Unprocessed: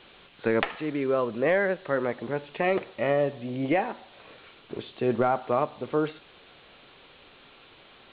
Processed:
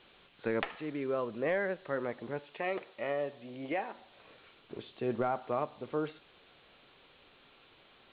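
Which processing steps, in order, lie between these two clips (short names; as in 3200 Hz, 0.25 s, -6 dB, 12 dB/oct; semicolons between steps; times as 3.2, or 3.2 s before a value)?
2.39–3.95 low shelf 220 Hz -12 dB; gain -8 dB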